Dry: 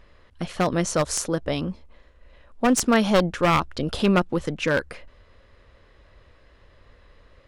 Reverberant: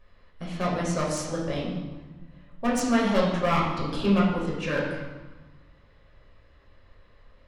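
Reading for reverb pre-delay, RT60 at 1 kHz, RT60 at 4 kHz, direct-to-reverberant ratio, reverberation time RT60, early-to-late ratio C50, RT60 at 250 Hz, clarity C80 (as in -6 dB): 7 ms, 1.4 s, 0.90 s, -5.5 dB, 1.3 s, 2.0 dB, 1.7 s, 4.5 dB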